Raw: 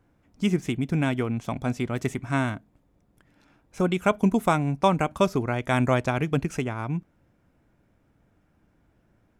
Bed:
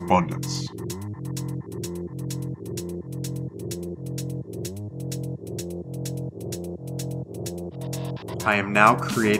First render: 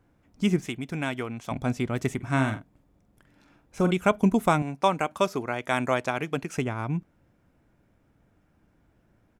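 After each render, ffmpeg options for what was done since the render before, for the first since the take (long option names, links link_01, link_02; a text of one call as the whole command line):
ffmpeg -i in.wav -filter_complex "[0:a]asettb=1/sr,asplit=3[link_01][link_02][link_03];[link_01]atrim=end=0.654[link_04];[link_02]atrim=start=0.65:end=1.51,asetpts=PTS-STARTPTS,afade=type=in:duration=0.004:curve=qsin,afade=type=out:start_time=0.856:duration=0.004:curve=qsin,lowshelf=frequency=400:gain=-10[link_05];[link_03]atrim=start=1.506[link_06];[link_04][link_05]acrossfade=duration=0.004:curve1=hsin:curve2=qsin[link_07];[link_07][link_06]acrossfade=duration=0.004:curve1=qsin:curve2=hsin,asplit=3[link_08][link_09][link_10];[link_08]afade=type=out:start_time=2.2:duration=0.02[link_11];[link_09]asplit=2[link_12][link_13];[link_13]adelay=45,volume=-9dB[link_14];[link_12][link_14]amix=inputs=2:normalize=0,afade=type=in:start_time=2.2:duration=0.02,afade=type=out:start_time=3.93:duration=0.02[link_15];[link_10]afade=type=in:start_time=3.93:duration=0.02[link_16];[link_11][link_15][link_16]amix=inputs=3:normalize=0,asettb=1/sr,asplit=3[link_17][link_18][link_19];[link_17]atrim=end=4.624[link_20];[link_18]atrim=start=4.62:end=6.58,asetpts=PTS-STARTPTS,afade=type=in:duration=0.004:curve=qsin,afade=type=out:start_time=1.956:duration=0.004:curve=qsin,highpass=frequency=420:poles=1[link_21];[link_19]atrim=start=6.576[link_22];[link_20][link_21]acrossfade=duration=0.004:curve1=hsin:curve2=qsin[link_23];[link_23][link_22]acrossfade=duration=0.004:curve1=qsin:curve2=hsin" out.wav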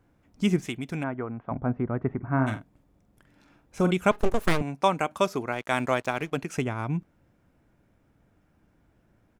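ffmpeg -i in.wav -filter_complex "[0:a]asplit=3[link_01][link_02][link_03];[link_01]afade=type=out:start_time=1.02:duration=0.02[link_04];[link_02]lowpass=frequency=1500:width=0.5412,lowpass=frequency=1500:width=1.3066,afade=type=in:start_time=1.02:duration=0.02,afade=type=out:start_time=2.46:duration=0.02[link_05];[link_03]afade=type=in:start_time=2.46:duration=0.02[link_06];[link_04][link_05][link_06]amix=inputs=3:normalize=0,asettb=1/sr,asplit=3[link_07][link_08][link_09];[link_07]atrim=end=4.114[link_10];[link_08]atrim=start=4.11:end=4.61,asetpts=PTS-STARTPTS,afade=type=in:duration=0.004:curve=qsin,afade=type=out:start_time=0.496:duration=0.004:curve=qsin,aeval=exprs='abs(val(0))':channel_layout=same[link_11];[link_09]atrim=start=4.606[link_12];[link_10][link_11]acrossfade=duration=0.004:curve1=hsin:curve2=qsin[link_13];[link_13][link_12]acrossfade=duration=0.004:curve1=qsin:curve2=hsin,asettb=1/sr,asplit=3[link_14][link_15][link_16];[link_14]atrim=end=5.524[link_17];[link_15]atrim=start=5.52:end=6.37,asetpts=PTS-STARTPTS,afade=type=in:duration=0.004:curve=qsin,afade=type=out:start_time=0.846:duration=0.004:curve=qsin,aeval=exprs='sgn(val(0))*max(abs(val(0))-0.00376,0)':channel_layout=same[link_18];[link_16]atrim=start=6.366[link_19];[link_17][link_18]acrossfade=duration=0.004:curve1=hsin:curve2=qsin[link_20];[link_20][link_19]acrossfade=duration=0.004:curve1=qsin:curve2=hsin" out.wav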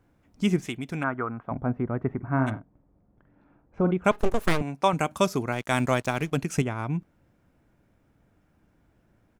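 ffmpeg -i in.wav -filter_complex "[0:a]asettb=1/sr,asplit=3[link_01][link_02][link_03];[link_01]atrim=end=1.014[link_04];[link_02]atrim=start=1.01:end=1.43,asetpts=PTS-STARTPTS,afade=type=in:duration=0.004:curve=qsin,afade=type=out:start_time=0.416:duration=0.004:curve=qsin,equalizer=frequency=1300:width=2:gain=12[link_05];[link_03]atrim=start=1.426[link_06];[link_04][link_05]acrossfade=duration=0.004:curve1=hsin:curve2=qsin[link_07];[link_07][link_06]acrossfade=duration=0.004:curve1=qsin:curve2=hsin,asplit=3[link_08][link_09][link_10];[link_08]afade=type=out:start_time=2.49:duration=0.02[link_11];[link_09]lowpass=1200,afade=type=in:start_time=2.49:duration=0.02,afade=type=out:start_time=4.04:duration=0.02[link_12];[link_10]afade=type=in:start_time=4.04:duration=0.02[link_13];[link_11][link_12][link_13]amix=inputs=3:normalize=0,asettb=1/sr,asplit=3[link_14][link_15][link_16];[link_14]atrim=end=4.934[link_17];[link_15]atrim=start=4.93:end=6.62,asetpts=PTS-STARTPTS,afade=type=in:duration=0.004:curve=qsin,afade=type=out:start_time=1.686:duration=0.004:curve=qsin,bass=frequency=250:gain=8,treble=frequency=4000:gain=6[link_18];[link_16]atrim=start=6.616[link_19];[link_17][link_18]acrossfade=duration=0.004:curve1=hsin:curve2=qsin[link_20];[link_20][link_19]acrossfade=duration=0.004:curve1=qsin:curve2=hsin" out.wav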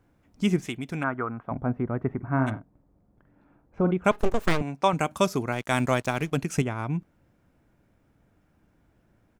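ffmpeg -i in.wav -filter_complex "[0:a]asettb=1/sr,asplit=3[link_01][link_02][link_03];[link_01]atrim=end=4.254[link_04];[link_02]atrim=start=4.25:end=5.01,asetpts=PTS-STARTPTS,afade=type=in:duration=0.004:curve=qsin,afade=type=out:start_time=0.756:duration=0.004:curve=qsin,equalizer=frequency=11000:width=4.2:gain=-14.5[link_05];[link_03]atrim=start=5.006[link_06];[link_04][link_05]acrossfade=duration=0.004:curve1=hsin:curve2=qsin[link_07];[link_07][link_06]acrossfade=duration=0.004:curve1=qsin:curve2=hsin" out.wav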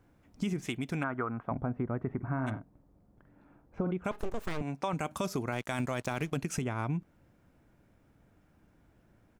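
ffmpeg -i in.wav -af "alimiter=limit=-17.5dB:level=0:latency=1:release=12,acompressor=threshold=-29dB:ratio=6" out.wav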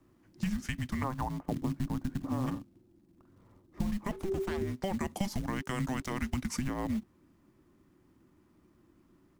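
ffmpeg -i in.wav -filter_complex "[0:a]acrossover=split=130|850|2500[link_01][link_02][link_03][link_04];[link_02]acrusher=bits=4:mode=log:mix=0:aa=0.000001[link_05];[link_01][link_05][link_03][link_04]amix=inputs=4:normalize=0,afreqshift=-390" out.wav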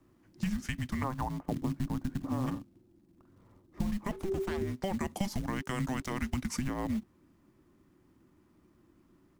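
ffmpeg -i in.wav -af anull out.wav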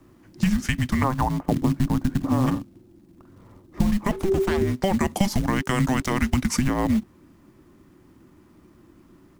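ffmpeg -i in.wav -af "volume=11.5dB" out.wav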